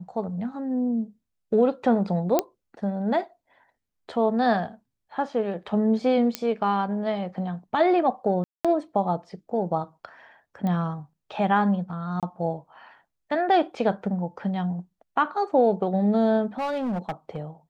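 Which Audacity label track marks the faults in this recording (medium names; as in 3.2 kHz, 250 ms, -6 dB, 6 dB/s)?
2.390000	2.390000	pop -7 dBFS
6.350000	6.350000	pop -9 dBFS
8.440000	8.650000	dropout 206 ms
10.670000	10.670000	pop -19 dBFS
12.200000	12.230000	dropout 27 ms
16.580000	17.380000	clipped -24 dBFS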